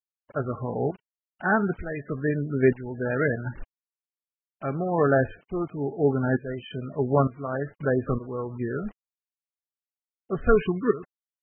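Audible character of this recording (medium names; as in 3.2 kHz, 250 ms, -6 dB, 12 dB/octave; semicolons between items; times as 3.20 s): tremolo saw up 1.1 Hz, depth 85%; a quantiser's noise floor 8-bit, dither none; MP3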